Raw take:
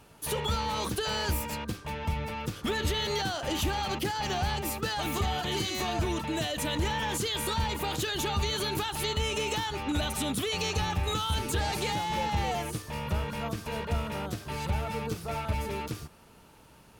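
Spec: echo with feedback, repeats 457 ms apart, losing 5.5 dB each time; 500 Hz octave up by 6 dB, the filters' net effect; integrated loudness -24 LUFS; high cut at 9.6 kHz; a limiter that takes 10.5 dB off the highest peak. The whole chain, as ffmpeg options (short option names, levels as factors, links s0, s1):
-af "lowpass=9600,equalizer=f=500:t=o:g=7.5,alimiter=level_in=1.33:limit=0.0631:level=0:latency=1,volume=0.75,aecho=1:1:457|914|1371|1828|2285|2742|3199:0.531|0.281|0.149|0.079|0.0419|0.0222|0.0118,volume=2.99"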